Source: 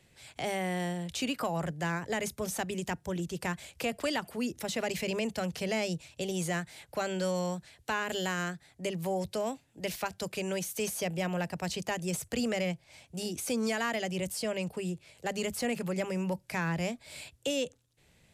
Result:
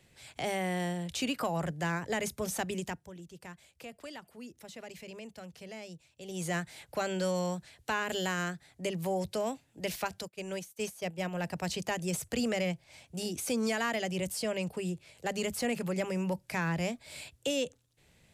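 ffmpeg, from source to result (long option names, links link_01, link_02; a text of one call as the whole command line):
ffmpeg -i in.wav -filter_complex "[0:a]asplit=3[link_01][link_02][link_03];[link_01]afade=type=out:start_time=10.21:duration=0.02[link_04];[link_02]agate=range=-33dB:threshold=-29dB:ratio=3:release=100:detection=peak,afade=type=in:start_time=10.21:duration=0.02,afade=type=out:start_time=11.42:duration=0.02[link_05];[link_03]afade=type=in:start_time=11.42:duration=0.02[link_06];[link_04][link_05][link_06]amix=inputs=3:normalize=0,asplit=3[link_07][link_08][link_09];[link_07]atrim=end=3.1,asetpts=PTS-STARTPTS,afade=type=out:start_time=2.76:duration=0.34:silence=0.211349[link_10];[link_08]atrim=start=3.1:end=6.21,asetpts=PTS-STARTPTS,volume=-13.5dB[link_11];[link_09]atrim=start=6.21,asetpts=PTS-STARTPTS,afade=type=in:duration=0.34:silence=0.211349[link_12];[link_10][link_11][link_12]concat=n=3:v=0:a=1" out.wav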